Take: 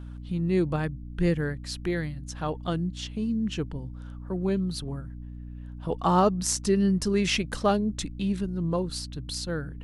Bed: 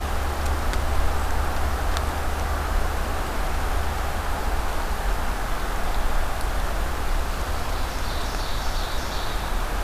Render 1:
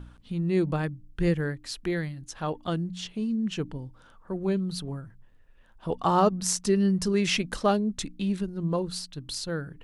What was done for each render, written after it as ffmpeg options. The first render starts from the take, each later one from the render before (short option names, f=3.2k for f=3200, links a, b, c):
-af "bandreject=f=60:t=h:w=4,bandreject=f=120:t=h:w=4,bandreject=f=180:t=h:w=4,bandreject=f=240:t=h:w=4,bandreject=f=300:t=h:w=4"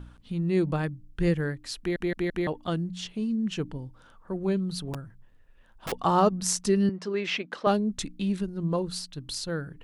-filter_complex "[0:a]asettb=1/sr,asplit=3[a][b][c];[a]atrim=end=4.934[d];[b]atrim=start=4.93:end=5.92,asetpts=PTS-STARTPTS,afade=t=in:d=0.004:c=qsin,afade=t=out:st=0.986:d=0.004:c=qsin,aeval=exprs='(mod(25.1*val(0)+1,2)-1)/25.1':c=same[e];[c]atrim=start=5.916[f];[d][e]acrossfade=d=0.004:c1=hsin:c2=qsin[g];[g][f]acrossfade=d=0.004:c1=qsin:c2=hsin,asettb=1/sr,asplit=3[h][i][j];[h]atrim=end=6.894[k];[i]atrim=start=6.89:end=7.67,asetpts=PTS-STARTPTS,afade=t=in:d=0.004:c=qsin,afade=t=out:st=0.776:d=0.004:c=qsin,highpass=350,lowpass=3.1k[l];[j]atrim=start=7.666[m];[k][l]acrossfade=d=0.004:c1=hsin:c2=qsin[n];[n][m]acrossfade=d=0.004:c1=qsin:c2=hsin,asplit=5[o][p][q][r][s];[o]atrim=end=1.962[t];[p]atrim=start=1.788:end=1.962[u];[q]atrim=start=1.788:end=1.962[v];[r]atrim=start=1.788:end=1.962[w];[s]atrim=start=2.468[x];[t][u]acrossfade=d=0.004:c1=hsin:c2=hsin[y];[y][v]acrossfade=d=0.004:c1=hsin:c2=hsin[z];[z][w]acrossfade=d=0.004:c1=hsin:c2=hsin[aa];[aa][x]acrossfade=d=0.004:c1=hsin:c2=hsin"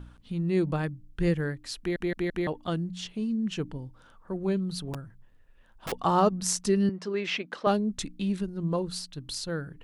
-af "volume=-1dB"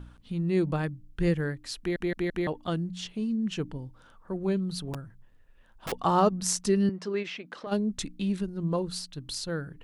-filter_complex "[0:a]asplit=3[a][b][c];[a]afade=t=out:st=7.22:d=0.02[d];[b]acompressor=threshold=-35dB:ratio=6:attack=3.2:release=140:knee=1:detection=peak,afade=t=in:st=7.22:d=0.02,afade=t=out:st=7.71:d=0.02[e];[c]afade=t=in:st=7.71:d=0.02[f];[d][e][f]amix=inputs=3:normalize=0"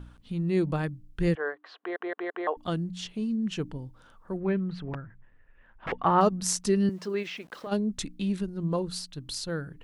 -filter_complex "[0:a]asettb=1/sr,asplit=3[a][b][c];[a]atrim=end=1.354[d];[b]atrim=start=1.35:end=2.57,asetpts=PTS-STARTPTS,afade=t=in:d=0.004:c=qsin,afade=t=out:st=1.216:d=0.004:c=qsin,highpass=f=410:w=0.5412,highpass=f=410:w=1.3066,equalizer=f=440:t=q:w=4:g=4,equalizer=f=720:t=q:w=4:g=8,equalizer=f=1.1k:t=q:w=4:g=10,equalizer=f=1.5k:t=q:w=4:g=4,equalizer=f=2.4k:t=q:w=4:g=-7,lowpass=f=3k:w=0.5412,lowpass=f=3k:w=1.3066[e];[c]atrim=start=2.566[f];[d][e]acrossfade=d=0.004:c1=hsin:c2=qsin[g];[g][f]acrossfade=d=0.004:c1=qsin:c2=hsin,asettb=1/sr,asplit=3[h][i][j];[h]atrim=end=4.404[k];[i]atrim=start=4.4:end=6.21,asetpts=PTS-STARTPTS,afade=t=in:d=0.004:c=qsin,afade=t=out:st=1.806:d=0.004:c=qsin,lowpass=f=2k:t=q:w=2.1[l];[j]atrim=start=6.206[m];[k][l]acrossfade=d=0.004:c1=hsin:c2=qsin[n];[n][m]acrossfade=d=0.004:c1=qsin:c2=hsin,asettb=1/sr,asplit=3[o][p][q];[o]atrim=end=6.894[r];[p]atrim=start=6.89:end=7.68,asetpts=PTS-STARTPTS,afade=t=in:d=0.004:c=qsin,afade=t=out:st=0.786:d=0.004:c=qsin,aeval=exprs='val(0)*gte(abs(val(0)),0.00224)':c=same[s];[q]atrim=start=7.676[t];[r][s]acrossfade=d=0.004:c1=hsin:c2=qsin[u];[u][t]acrossfade=d=0.004:c1=qsin:c2=hsin"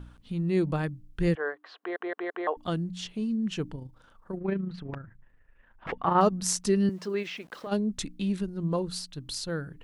-filter_complex "[0:a]asettb=1/sr,asplit=3[a][b][c];[a]atrim=end=3.754[d];[b]atrim=start=3.75:end=6.16,asetpts=PTS-STARTPTS,afade=t=in:d=0.004:c=qsin,afade=t=out:st=2.406:d=0.004:c=qsin,tremolo=f=27:d=0.519[e];[c]atrim=start=6.156[f];[d][e]acrossfade=d=0.004:c1=hsin:c2=qsin[g];[g][f]acrossfade=d=0.004:c1=qsin:c2=hsin"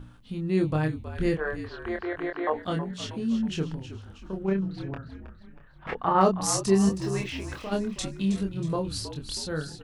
-filter_complex "[0:a]asplit=2[a][b];[b]adelay=26,volume=-4dB[c];[a][c]amix=inputs=2:normalize=0,asplit=6[d][e][f][g][h][i];[e]adelay=319,afreqshift=-60,volume=-11.5dB[j];[f]adelay=638,afreqshift=-120,volume=-17.5dB[k];[g]adelay=957,afreqshift=-180,volume=-23.5dB[l];[h]adelay=1276,afreqshift=-240,volume=-29.6dB[m];[i]adelay=1595,afreqshift=-300,volume=-35.6dB[n];[d][j][k][l][m][n]amix=inputs=6:normalize=0"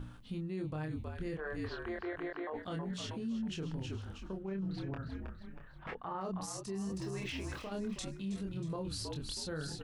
-af "areverse,acompressor=threshold=-33dB:ratio=10,areverse,alimiter=level_in=7.5dB:limit=-24dB:level=0:latency=1:release=56,volume=-7.5dB"